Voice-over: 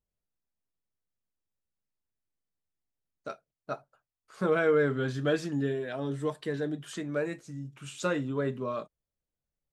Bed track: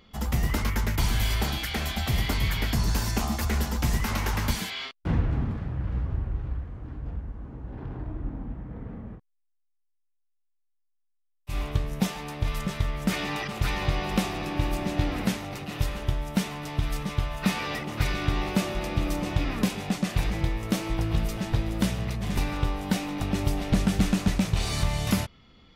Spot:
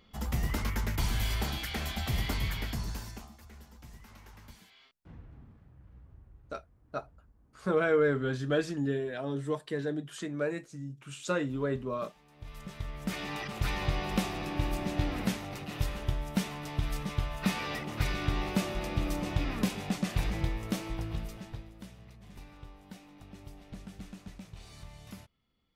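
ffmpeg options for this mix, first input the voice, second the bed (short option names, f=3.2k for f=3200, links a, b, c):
-filter_complex "[0:a]adelay=3250,volume=-1dB[a];[1:a]volume=15.5dB,afade=t=out:st=2.34:d=0.98:silence=0.1,afade=t=in:st=12.29:d=1.37:silence=0.0891251,afade=t=out:st=20.42:d=1.31:silence=0.125893[b];[a][b]amix=inputs=2:normalize=0"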